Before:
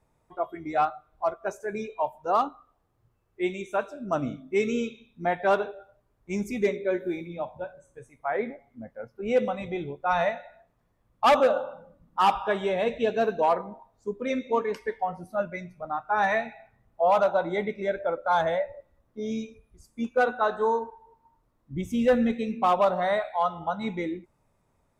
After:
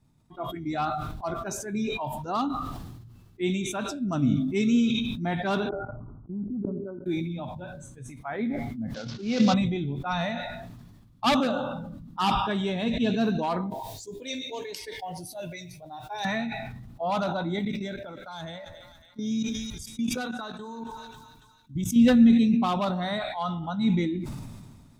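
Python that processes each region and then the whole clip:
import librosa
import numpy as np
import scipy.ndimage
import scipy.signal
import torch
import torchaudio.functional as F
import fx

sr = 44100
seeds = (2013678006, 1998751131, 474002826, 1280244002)

y = fx.chain(x, sr, fx.level_steps(step_db=19),
    fx.brickwall_lowpass(high_hz=1500.0), at=(5.69, 7.06))
y = fx.chain(y, sr, fx.cvsd(bps=32000),
    fx.low_shelf(hz=150.0, db=-11.0),
    fx.sustainer(db_per_s=74.0), at=(8.94, 9.54))
y = fx.chain(y, sr, fx.tilt_eq(slope=2.5),
    fx.fixed_phaser(hz=530.0, stages=4), at=(13.7, 16.25))
y = fx.chain(y, sr, fx.high_shelf(hz=4100.0, db=10.5),
    fx.level_steps(step_db=17),
    fx.echo_thinned(ms=275, feedback_pct=63, hz=930.0, wet_db=-18.5), at=(17.59, 21.96))
y = fx.graphic_eq(y, sr, hz=(125, 250, 500, 1000, 2000, 4000), db=(8, 9, -12, -3, -5, 7))
y = fx.sustainer(y, sr, db_per_s=33.0)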